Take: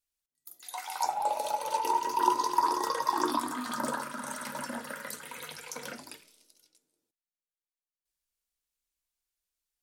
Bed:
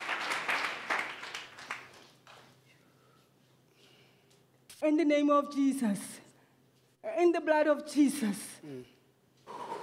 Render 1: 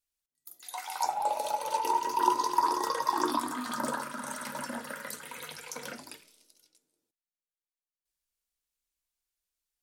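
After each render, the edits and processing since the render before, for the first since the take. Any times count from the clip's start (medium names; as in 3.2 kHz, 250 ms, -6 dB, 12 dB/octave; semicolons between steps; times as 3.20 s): no audible change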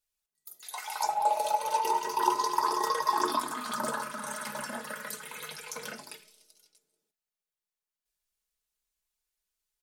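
peaking EQ 250 Hz -11 dB 0.23 oct; comb 4.7 ms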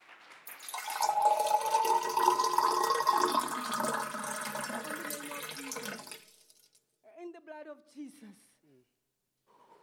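add bed -20 dB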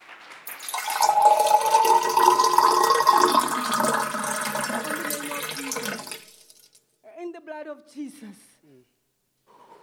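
trim +10 dB; peak limiter -2 dBFS, peak gain reduction 1.5 dB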